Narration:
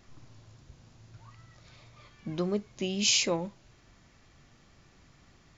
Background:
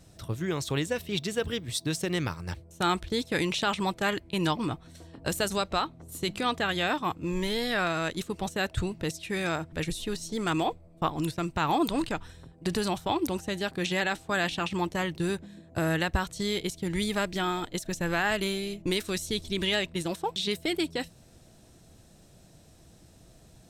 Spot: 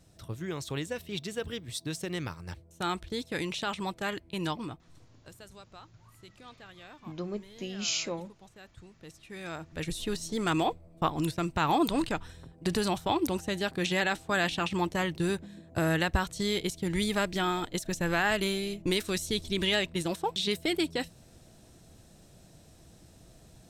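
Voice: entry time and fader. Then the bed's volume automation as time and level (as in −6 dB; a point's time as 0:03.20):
4.80 s, −6.0 dB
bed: 0:04.55 −5.5 dB
0:05.34 −22.5 dB
0:08.79 −22.5 dB
0:10.03 0 dB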